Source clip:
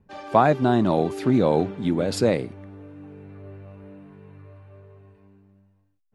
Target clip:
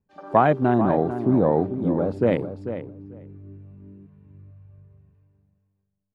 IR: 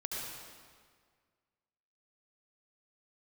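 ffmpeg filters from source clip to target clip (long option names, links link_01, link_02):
-filter_complex "[0:a]afwtdn=0.0251,asplit=2[link_01][link_02];[link_02]adelay=443,lowpass=frequency=2200:poles=1,volume=-10dB,asplit=2[link_03][link_04];[link_04]adelay=443,lowpass=frequency=2200:poles=1,volume=0.15[link_05];[link_01][link_03][link_05]amix=inputs=3:normalize=0,asettb=1/sr,asplit=3[link_06][link_07][link_08];[link_06]atrim=end=1.134[link_09];[link_07]atrim=start=1.13:end=2.27,asetpts=PTS-STARTPTS,afade=type=in:duration=0.004:curve=qsin,afade=type=out:start_time=1.136:duration=0.004:curve=qsin,acrossover=split=2600[link_10][link_11];[link_11]acompressor=threshold=-60dB:ratio=4:attack=1:release=60[link_12];[link_10][link_12]amix=inputs=2:normalize=0[link_13];[link_08]atrim=start=2.266[link_14];[link_09][link_13]acrossfade=duration=0.004:curve1=hsin:curve2=qsin[link_15];[link_15][link_14]acrossfade=duration=0.004:curve1=qsin:curve2=hsin"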